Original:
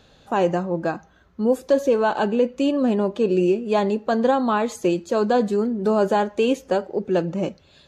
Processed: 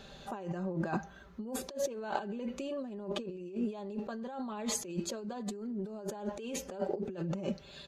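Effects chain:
comb filter 5.1 ms, depth 56%
compressor whose output falls as the input rises −30 dBFS, ratio −1
level −8.5 dB

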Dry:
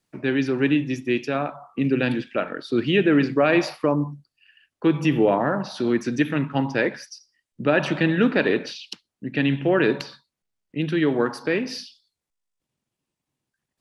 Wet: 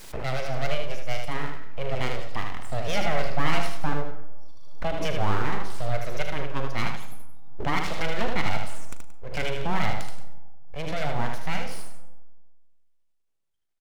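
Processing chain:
parametric band 140 Hz −2.5 dB
full-wave rectification
double-tracking delay 39 ms −13.5 dB
multi-tap delay 77/177 ms −5/−16 dB
comb and all-pass reverb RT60 1.3 s, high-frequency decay 0.35×, pre-delay 110 ms, DRR 18.5 dB
background raised ahead of every attack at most 35 dB per second
level −5.5 dB

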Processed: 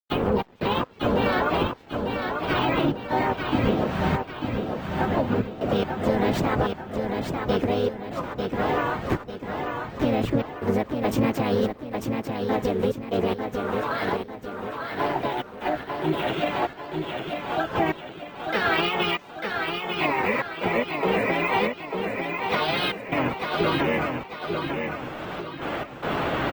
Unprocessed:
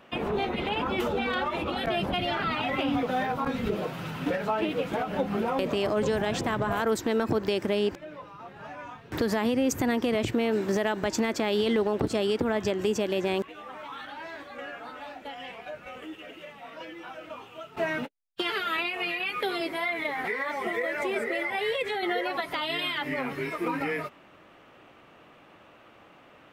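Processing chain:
camcorder AGC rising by 8.9 dB per second
noise gate with hold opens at −39 dBFS
high-shelf EQ 3,000 Hz −10.5 dB
downward compressor 6 to 1, threshold −30 dBFS, peak gain reduction 8.5 dB
gate pattern "xx.x.xxx...." 72 BPM −24 dB
pitch-shifted copies added −12 semitones −2 dB, +3 semitones 0 dB, +4 semitones −8 dB
dead-zone distortion −56.5 dBFS
on a send: repeating echo 896 ms, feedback 43%, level −5 dB
on the sum: bad sample-rate conversion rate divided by 2×, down filtered, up hold
level +6.5 dB
Opus 24 kbit/s 48,000 Hz

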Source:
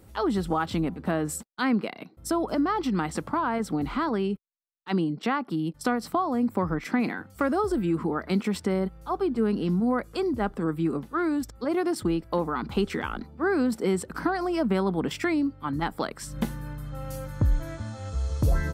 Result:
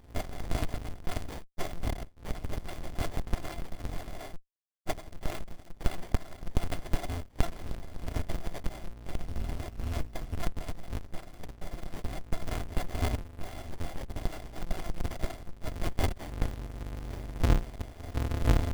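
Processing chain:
samples in bit-reversed order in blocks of 256 samples
0:09.21–0:10.38: low-shelf EQ 400 Hz +8 dB
windowed peak hold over 33 samples
level +1 dB

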